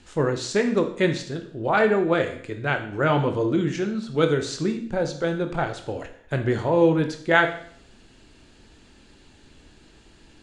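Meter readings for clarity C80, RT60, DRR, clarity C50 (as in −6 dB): 13.5 dB, 0.60 s, 5.5 dB, 10.0 dB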